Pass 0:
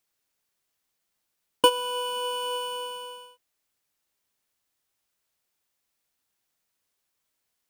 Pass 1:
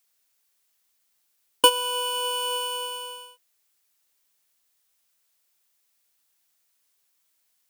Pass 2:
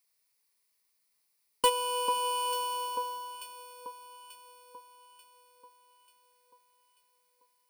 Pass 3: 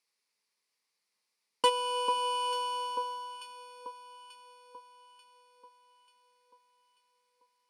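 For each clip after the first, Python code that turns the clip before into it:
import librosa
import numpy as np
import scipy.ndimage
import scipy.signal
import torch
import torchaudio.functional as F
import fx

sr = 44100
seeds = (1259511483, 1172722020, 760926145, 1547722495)

y1 = fx.tilt_eq(x, sr, slope=2.0)
y1 = F.gain(torch.from_numpy(y1), 1.5).numpy()
y2 = fx.ripple_eq(y1, sr, per_octave=0.89, db=8)
y2 = fx.echo_alternate(y2, sr, ms=444, hz=1400.0, feedback_pct=68, wet_db=-9.0)
y2 = 10.0 ** (-11.5 / 20.0) * np.tanh(y2 / 10.0 ** (-11.5 / 20.0))
y2 = F.gain(torch.from_numpy(y2), -5.5).numpy()
y3 = fx.bandpass_edges(y2, sr, low_hz=160.0, high_hz=6600.0)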